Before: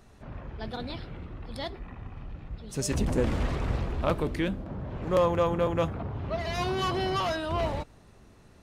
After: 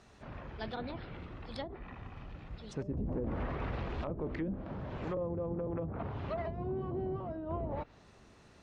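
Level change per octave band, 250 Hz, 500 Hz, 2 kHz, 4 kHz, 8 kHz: -6.5 dB, -9.5 dB, -11.0 dB, -16.0 dB, under -20 dB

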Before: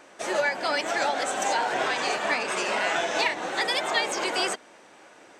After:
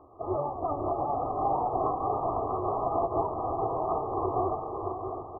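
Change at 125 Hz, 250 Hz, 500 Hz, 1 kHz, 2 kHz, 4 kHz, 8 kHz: +13.0 dB, +1.5 dB, -1.0 dB, 0.0 dB, under -40 dB, under -40 dB, under -40 dB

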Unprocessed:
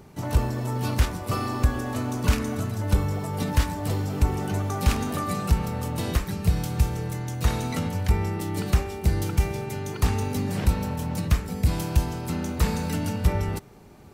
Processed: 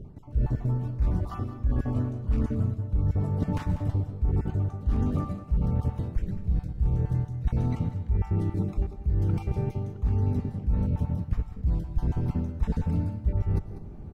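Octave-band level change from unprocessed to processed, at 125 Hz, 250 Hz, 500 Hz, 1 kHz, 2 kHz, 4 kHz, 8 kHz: -1.0 dB, -3.0 dB, -7.0 dB, -11.0 dB, under -15 dB, under -20 dB, under -25 dB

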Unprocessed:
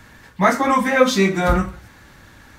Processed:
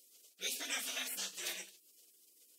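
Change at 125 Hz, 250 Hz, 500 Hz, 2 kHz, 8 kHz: under -40 dB, -38.0 dB, -36.0 dB, -21.5 dB, -7.0 dB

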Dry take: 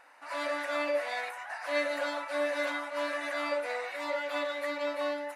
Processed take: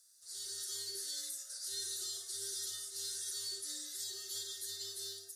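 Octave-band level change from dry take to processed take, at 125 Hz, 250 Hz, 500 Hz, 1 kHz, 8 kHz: no reading, -24.0 dB, -27.0 dB, -34.0 dB, +14.5 dB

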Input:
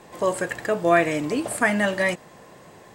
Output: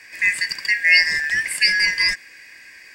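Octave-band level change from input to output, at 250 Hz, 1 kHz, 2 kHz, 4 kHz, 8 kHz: under -20 dB, under -15 dB, +10.0 dB, +17.0 dB, +4.5 dB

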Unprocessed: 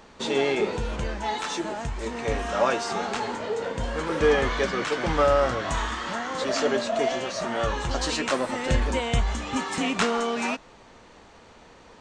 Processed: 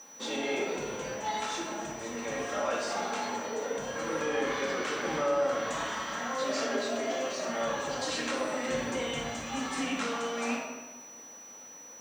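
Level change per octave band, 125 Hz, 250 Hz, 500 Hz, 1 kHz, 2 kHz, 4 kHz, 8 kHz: -15.5 dB, -6.0 dB, -6.5 dB, -6.0 dB, -5.0 dB, -5.5 dB, -1.0 dB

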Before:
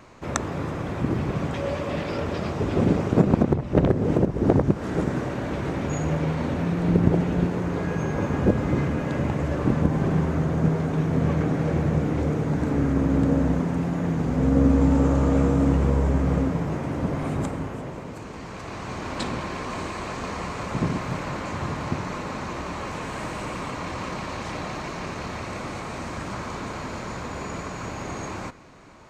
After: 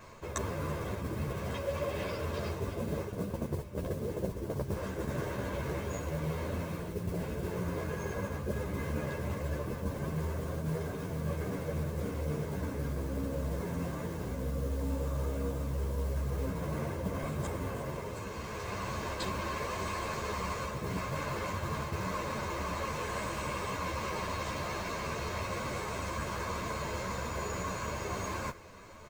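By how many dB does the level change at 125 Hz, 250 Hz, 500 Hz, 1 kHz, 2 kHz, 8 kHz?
-11.5 dB, -15.0 dB, -9.0 dB, -6.5 dB, -5.5 dB, -3.0 dB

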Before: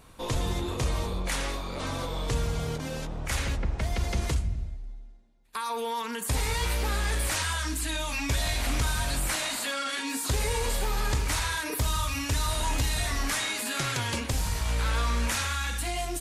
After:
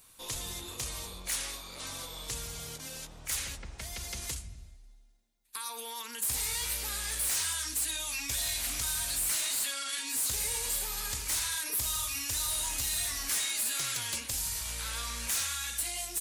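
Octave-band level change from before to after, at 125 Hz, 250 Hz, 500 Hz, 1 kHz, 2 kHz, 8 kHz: -16.0 dB, -15.5 dB, -14.5 dB, -11.5 dB, -7.0 dB, +3.5 dB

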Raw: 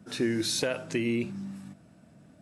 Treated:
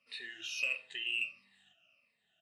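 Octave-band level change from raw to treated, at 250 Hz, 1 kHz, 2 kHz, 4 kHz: -34.5 dB, under -15 dB, +1.5 dB, -4.5 dB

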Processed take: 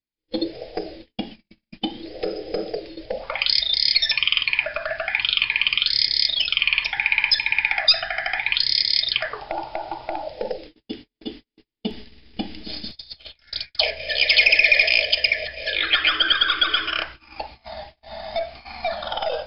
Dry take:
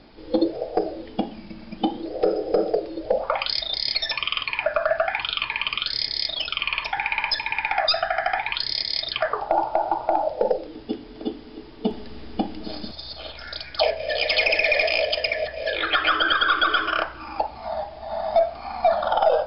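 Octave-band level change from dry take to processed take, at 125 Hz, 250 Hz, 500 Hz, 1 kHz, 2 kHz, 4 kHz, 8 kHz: -1.5 dB, -4.0 dB, -7.0 dB, -7.5 dB, +4.0 dB, +6.0 dB, no reading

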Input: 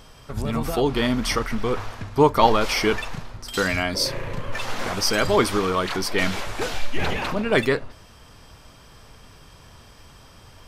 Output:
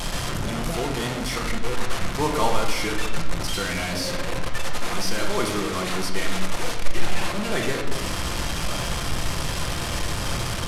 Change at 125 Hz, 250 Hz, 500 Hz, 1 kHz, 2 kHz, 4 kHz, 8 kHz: +1.0 dB, -3.0 dB, -5.5 dB, -3.5 dB, -2.0 dB, 0.0 dB, +3.0 dB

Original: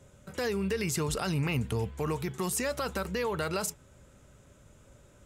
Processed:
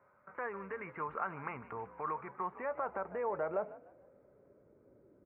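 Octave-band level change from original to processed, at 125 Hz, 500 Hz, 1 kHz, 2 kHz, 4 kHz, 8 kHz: -21.0 dB, -6.0 dB, -0.5 dB, -7.5 dB, under -35 dB, under -40 dB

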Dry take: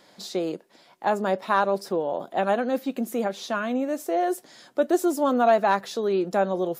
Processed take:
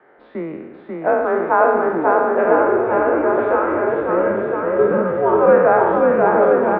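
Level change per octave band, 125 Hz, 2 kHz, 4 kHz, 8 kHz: +7.0 dB, +9.0 dB, under -15 dB, under -40 dB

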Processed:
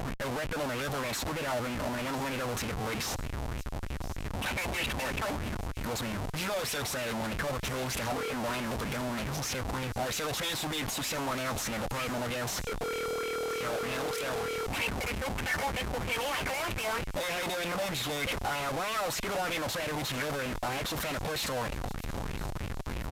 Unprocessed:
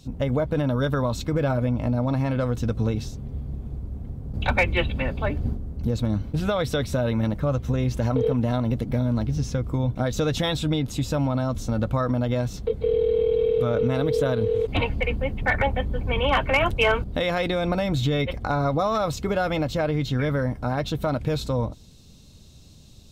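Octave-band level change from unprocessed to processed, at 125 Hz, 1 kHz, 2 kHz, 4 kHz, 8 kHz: -13.5 dB, -4.5 dB, -4.0 dB, -1.5 dB, +5.5 dB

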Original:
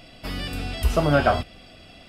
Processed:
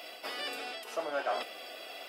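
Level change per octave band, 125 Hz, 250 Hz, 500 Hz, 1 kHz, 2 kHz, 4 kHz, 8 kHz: under -40 dB, -22.5 dB, -12.0 dB, -11.0 dB, -9.5 dB, -5.5 dB, -8.5 dB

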